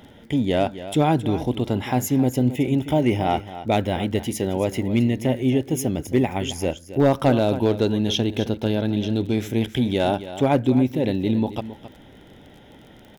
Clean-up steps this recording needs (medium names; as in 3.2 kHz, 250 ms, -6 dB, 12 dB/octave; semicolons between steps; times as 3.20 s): clip repair -9 dBFS; de-click; inverse comb 269 ms -13.5 dB